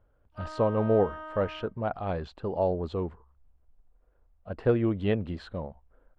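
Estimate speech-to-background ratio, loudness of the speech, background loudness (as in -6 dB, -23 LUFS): 12.5 dB, -29.5 LUFS, -42.0 LUFS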